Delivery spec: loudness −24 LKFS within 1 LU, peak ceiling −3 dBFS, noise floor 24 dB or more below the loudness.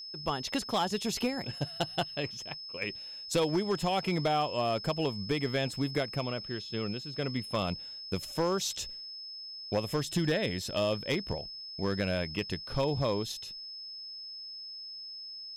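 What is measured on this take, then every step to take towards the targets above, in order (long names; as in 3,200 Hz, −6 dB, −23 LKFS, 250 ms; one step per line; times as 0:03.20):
share of clipped samples 0.6%; peaks flattened at −21.5 dBFS; interfering tone 5,200 Hz; level of the tone −41 dBFS; integrated loudness −33.0 LKFS; sample peak −21.5 dBFS; target loudness −24.0 LKFS
→ clipped peaks rebuilt −21.5 dBFS
notch filter 5,200 Hz, Q 30
level +9 dB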